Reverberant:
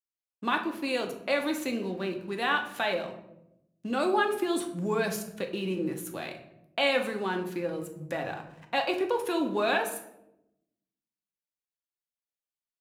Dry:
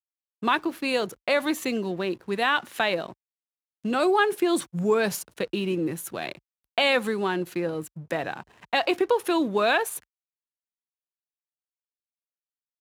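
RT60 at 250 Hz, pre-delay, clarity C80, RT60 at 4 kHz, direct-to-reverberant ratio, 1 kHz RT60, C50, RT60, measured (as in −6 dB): 1.2 s, 3 ms, 12.0 dB, 0.50 s, 3.0 dB, 0.70 s, 9.0 dB, 0.85 s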